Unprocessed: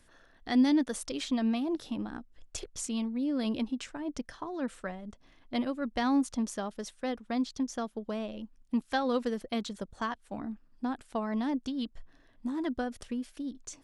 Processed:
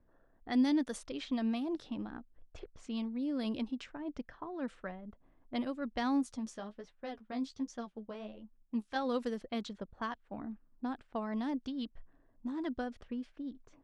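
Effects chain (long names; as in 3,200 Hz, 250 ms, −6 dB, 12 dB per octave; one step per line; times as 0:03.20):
low-pass that shuts in the quiet parts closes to 770 Hz, open at −26.5 dBFS
0:06.23–0:08.96: flanger 1.3 Hz, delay 8 ms, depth 8.6 ms, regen +22%
level −4.5 dB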